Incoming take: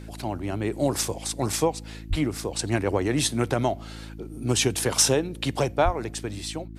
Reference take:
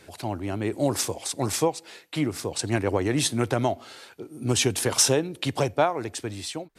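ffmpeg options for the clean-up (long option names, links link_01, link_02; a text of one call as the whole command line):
ffmpeg -i in.wav -filter_complex "[0:a]bandreject=frequency=54.4:width_type=h:width=4,bandreject=frequency=108.8:width_type=h:width=4,bandreject=frequency=163.2:width_type=h:width=4,bandreject=frequency=217.6:width_type=h:width=4,bandreject=frequency=272:width_type=h:width=4,bandreject=frequency=326.4:width_type=h:width=4,asplit=3[link_01][link_02][link_03];[link_01]afade=type=out:start_time=2.09:duration=0.02[link_04];[link_02]highpass=frequency=140:width=0.5412,highpass=frequency=140:width=1.3066,afade=type=in:start_time=2.09:duration=0.02,afade=type=out:start_time=2.21:duration=0.02[link_05];[link_03]afade=type=in:start_time=2.21:duration=0.02[link_06];[link_04][link_05][link_06]amix=inputs=3:normalize=0,asplit=3[link_07][link_08][link_09];[link_07]afade=type=out:start_time=5.84:duration=0.02[link_10];[link_08]highpass=frequency=140:width=0.5412,highpass=frequency=140:width=1.3066,afade=type=in:start_time=5.84:duration=0.02,afade=type=out:start_time=5.96:duration=0.02[link_11];[link_09]afade=type=in:start_time=5.96:duration=0.02[link_12];[link_10][link_11][link_12]amix=inputs=3:normalize=0" out.wav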